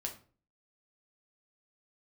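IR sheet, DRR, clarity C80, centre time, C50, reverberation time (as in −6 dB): 1.0 dB, 16.5 dB, 14 ms, 11.0 dB, 0.40 s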